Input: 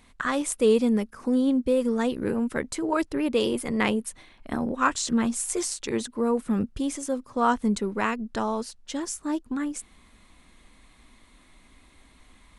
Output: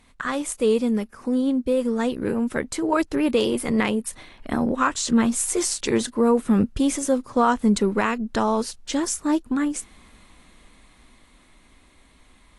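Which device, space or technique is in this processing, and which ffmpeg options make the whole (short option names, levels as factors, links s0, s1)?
low-bitrate web radio: -af "dynaudnorm=f=280:g=21:m=3.35,alimiter=limit=0.355:level=0:latency=1:release=346" -ar 32000 -c:a aac -b:a 48k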